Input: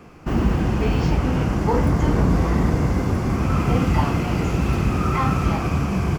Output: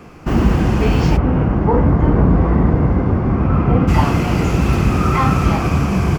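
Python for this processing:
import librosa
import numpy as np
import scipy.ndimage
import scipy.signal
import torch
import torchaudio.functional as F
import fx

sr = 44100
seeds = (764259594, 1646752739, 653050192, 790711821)

y = fx.bessel_lowpass(x, sr, hz=1300.0, order=2, at=(1.16, 3.87), fade=0.02)
y = y * 10.0 ** (5.5 / 20.0)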